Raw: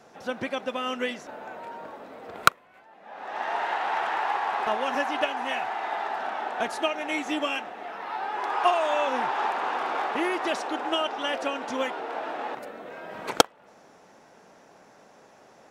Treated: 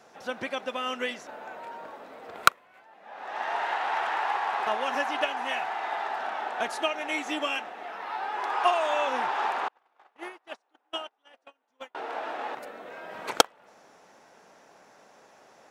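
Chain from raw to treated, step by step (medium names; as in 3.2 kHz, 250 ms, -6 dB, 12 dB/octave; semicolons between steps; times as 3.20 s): 9.68–11.95 s: gate -23 dBFS, range -42 dB; bass shelf 380 Hz -7.5 dB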